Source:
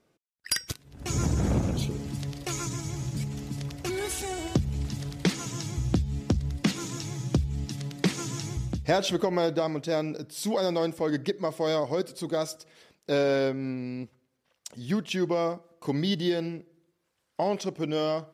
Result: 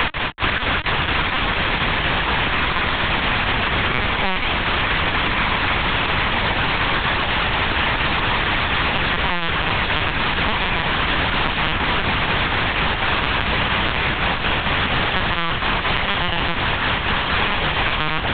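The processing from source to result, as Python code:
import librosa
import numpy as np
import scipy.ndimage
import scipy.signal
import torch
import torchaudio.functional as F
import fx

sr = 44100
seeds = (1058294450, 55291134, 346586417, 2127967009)

p1 = fx.envelope_flatten(x, sr, power=0.1)
p2 = fx.highpass(p1, sr, hz=1200.0, slope=6)
p3 = fx.over_compress(p2, sr, threshold_db=-35.0, ratio=-0.5)
p4 = p2 + (p3 * librosa.db_to_amplitude(-1.0))
p5 = fx.power_curve(p4, sr, exponent=0.35)
p6 = p5 * (1.0 - 0.95 / 2.0 + 0.95 / 2.0 * np.cos(2.0 * np.pi * 4.2 * (np.arange(len(p5)) / sr)))
p7 = fx.fuzz(p6, sr, gain_db=36.0, gate_db=-40.0)
p8 = fx.air_absorb(p7, sr, metres=340.0)
p9 = p8 + fx.echo_diffused(p8, sr, ms=1421, feedback_pct=51, wet_db=-5, dry=0)
p10 = fx.lpc_vocoder(p9, sr, seeds[0], excitation='pitch_kept', order=8)
p11 = fx.band_squash(p10, sr, depth_pct=100)
y = p11 * librosa.db_to_amplitude(4.0)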